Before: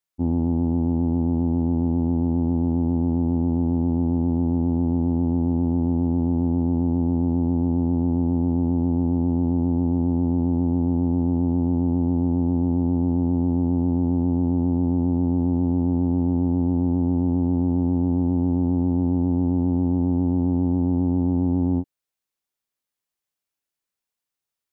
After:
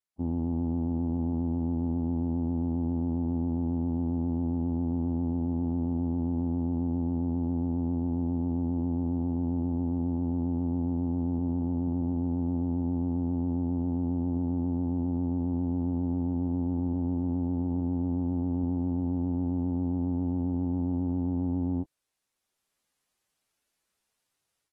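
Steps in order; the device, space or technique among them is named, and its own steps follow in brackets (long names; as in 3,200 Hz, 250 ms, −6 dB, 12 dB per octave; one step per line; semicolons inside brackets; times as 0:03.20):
low-bitrate web radio (automatic gain control gain up to 15 dB; brickwall limiter −13.5 dBFS, peak gain reduction 11.5 dB; level −8.5 dB; AAC 32 kbit/s 44,100 Hz)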